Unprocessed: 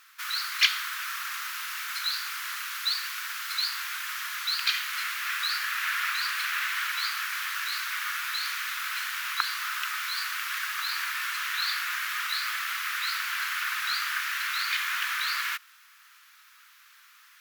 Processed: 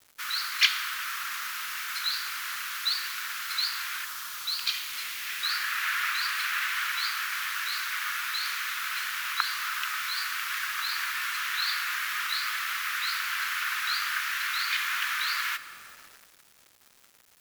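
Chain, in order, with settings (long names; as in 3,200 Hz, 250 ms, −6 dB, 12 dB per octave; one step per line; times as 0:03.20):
0:04.04–0:05.43: parametric band 2,300 Hz → 1,200 Hz −9.5 dB 1.2 octaves
convolution reverb RT60 2.7 s, pre-delay 70 ms, DRR 14 dB
bit-depth reduction 8 bits, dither none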